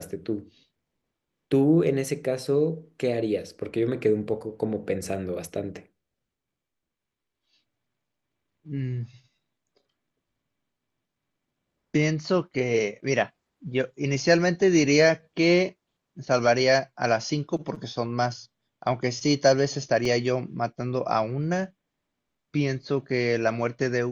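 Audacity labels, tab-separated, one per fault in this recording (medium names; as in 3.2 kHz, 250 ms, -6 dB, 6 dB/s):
20.050000	20.050000	dropout 3.4 ms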